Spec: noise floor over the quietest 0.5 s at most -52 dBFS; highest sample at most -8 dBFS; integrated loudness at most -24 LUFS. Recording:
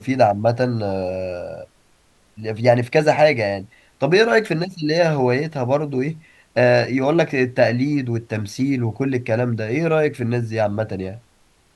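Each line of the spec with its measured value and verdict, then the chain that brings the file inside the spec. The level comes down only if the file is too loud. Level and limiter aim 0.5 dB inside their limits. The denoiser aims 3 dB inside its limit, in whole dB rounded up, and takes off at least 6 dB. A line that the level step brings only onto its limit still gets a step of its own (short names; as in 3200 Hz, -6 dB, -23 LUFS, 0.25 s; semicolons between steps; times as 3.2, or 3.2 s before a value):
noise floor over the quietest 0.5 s -57 dBFS: OK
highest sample -2.0 dBFS: fail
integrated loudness -19.5 LUFS: fail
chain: gain -5 dB; limiter -8.5 dBFS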